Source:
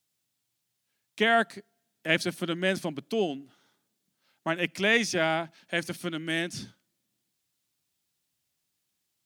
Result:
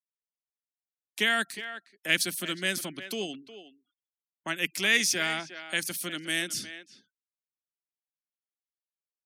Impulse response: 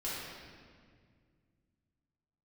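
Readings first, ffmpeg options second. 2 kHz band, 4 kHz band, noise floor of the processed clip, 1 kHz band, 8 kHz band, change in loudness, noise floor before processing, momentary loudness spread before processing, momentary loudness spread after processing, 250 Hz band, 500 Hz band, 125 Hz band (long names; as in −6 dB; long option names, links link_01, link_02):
+0.5 dB, +3.5 dB, below −85 dBFS, −6.0 dB, +8.5 dB, −0.5 dB, −80 dBFS, 12 LU, 16 LU, −6.0 dB, −8.5 dB, −7.0 dB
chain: -filter_complex "[0:a]aresample=32000,aresample=44100,acrossover=split=370|1200[link_01][link_02][link_03];[link_02]acompressor=threshold=-43dB:ratio=6[link_04];[link_01][link_04][link_03]amix=inputs=3:normalize=0,aemphasis=mode=production:type=bsi,afftfilt=real='re*gte(hypot(re,im),0.00282)':imag='im*gte(hypot(re,im),0.00282)':win_size=1024:overlap=0.75,asplit=2[link_05][link_06];[link_06]adelay=360,highpass=300,lowpass=3400,asoftclip=type=hard:threshold=-16.5dB,volume=-12dB[link_07];[link_05][link_07]amix=inputs=2:normalize=0"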